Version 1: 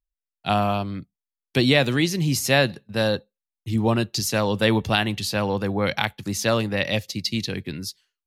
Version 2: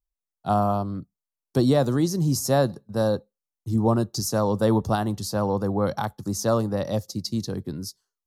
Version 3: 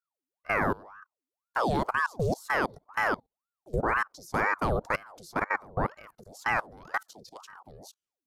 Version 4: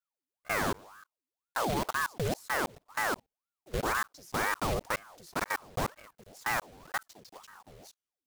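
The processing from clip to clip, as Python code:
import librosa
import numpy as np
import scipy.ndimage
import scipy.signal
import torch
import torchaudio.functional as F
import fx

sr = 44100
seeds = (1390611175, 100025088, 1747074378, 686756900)

y1 = fx.curve_eq(x, sr, hz=(1200.0, 2400.0, 5500.0), db=(0, -26, -2))
y2 = fx.level_steps(y1, sr, step_db=23)
y2 = fx.ring_lfo(y2, sr, carrier_hz=840.0, swing_pct=70, hz=2.0)
y3 = fx.block_float(y2, sr, bits=3)
y3 = y3 * 10.0 ** (-4.0 / 20.0)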